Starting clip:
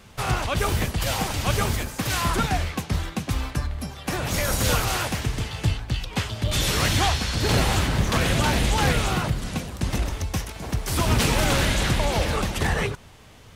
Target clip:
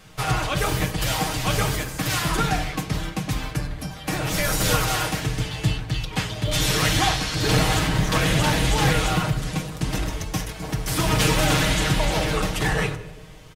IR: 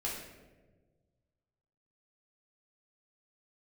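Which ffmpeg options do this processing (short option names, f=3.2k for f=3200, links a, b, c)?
-filter_complex "[0:a]aecho=1:1:6.4:0.65,bandreject=f=57.45:t=h:w=4,bandreject=f=114.9:t=h:w=4,bandreject=f=172.35:t=h:w=4,bandreject=f=229.8:t=h:w=4,bandreject=f=287.25:t=h:w=4,bandreject=f=344.7:t=h:w=4,bandreject=f=402.15:t=h:w=4,bandreject=f=459.6:t=h:w=4,bandreject=f=517.05:t=h:w=4,bandreject=f=574.5:t=h:w=4,bandreject=f=631.95:t=h:w=4,bandreject=f=689.4:t=h:w=4,bandreject=f=746.85:t=h:w=4,bandreject=f=804.3:t=h:w=4,bandreject=f=861.75:t=h:w=4,bandreject=f=919.2:t=h:w=4,bandreject=f=976.65:t=h:w=4,bandreject=f=1.0341k:t=h:w=4,bandreject=f=1.09155k:t=h:w=4,bandreject=f=1.149k:t=h:w=4,bandreject=f=1.20645k:t=h:w=4,bandreject=f=1.2639k:t=h:w=4,bandreject=f=1.32135k:t=h:w=4,bandreject=f=1.3788k:t=h:w=4,bandreject=f=1.43625k:t=h:w=4,bandreject=f=1.4937k:t=h:w=4,bandreject=f=1.55115k:t=h:w=4,bandreject=f=1.6086k:t=h:w=4,bandreject=f=1.66605k:t=h:w=4,asplit=2[a][b];[1:a]atrim=start_sample=2205,adelay=7[c];[b][c]afir=irnorm=-1:irlink=0,volume=-13dB[d];[a][d]amix=inputs=2:normalize=0"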